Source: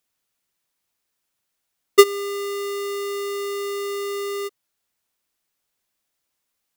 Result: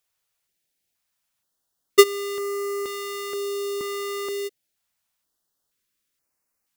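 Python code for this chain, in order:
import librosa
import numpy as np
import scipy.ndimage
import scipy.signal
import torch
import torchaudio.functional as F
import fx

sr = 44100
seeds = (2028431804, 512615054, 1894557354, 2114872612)

y = fx.filter_held_notch(x, sr, hz=2.1, low_hz=250.0, high_hz=3400.0)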